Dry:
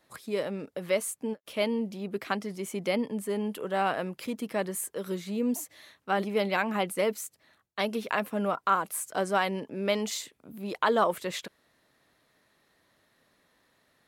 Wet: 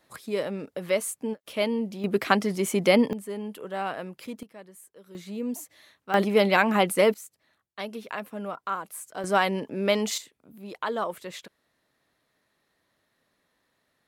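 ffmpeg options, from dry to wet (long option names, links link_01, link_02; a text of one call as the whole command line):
ffmpeg -i in.wav -af "asetnsamples=nb_out_samples=441:pad=0,asendcmd='2.04 volume volume 9dB;3.13 volume volume -3.5dB;4.43 volume volume -16dB;5.15 volume volume -3dB;6.14 volume volume 7dB;7.14 volume volume -5.5dB;9.24 volume volume 4dB;10.18 volume volume -5dB',volume=2dB" out.wav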